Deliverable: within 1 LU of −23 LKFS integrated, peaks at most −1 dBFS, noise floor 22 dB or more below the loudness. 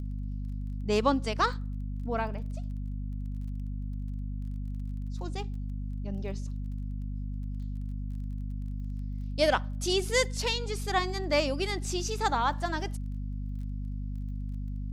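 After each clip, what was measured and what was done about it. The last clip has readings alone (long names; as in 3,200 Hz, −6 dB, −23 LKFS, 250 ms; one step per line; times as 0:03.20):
crackle rate 22 per second; mains hum 50 Hz; hum harmonics up to 250 Hz; level of the hum −32 dBFS; integrated loudness −32.5 LKFS; sample peak −11.0 dBFS; target loudness −23.0 LKFS
→ click removal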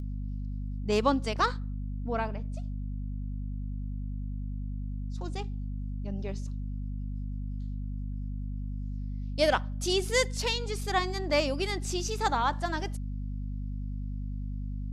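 crackle rate 0.067 per second; mains hum 50 Hz; hum harmonics up to 250 Hz; level of the hum −32 dBFS
→ hum removal 50 Hz, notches 5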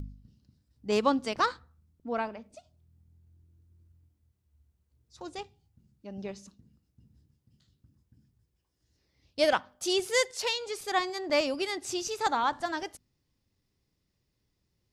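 mains hum none found; integrated loudness −30.0 LKFS; sample peak −12.0 dBFS; target loudness −23.0 LKFS
→ level +7 dB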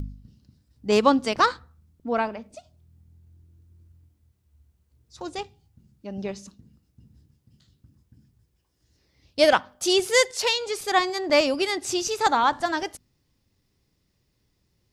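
integrated loudness −23.0 LKFS; sample peak −5.0 dBFS; background noise floor −71 dBFS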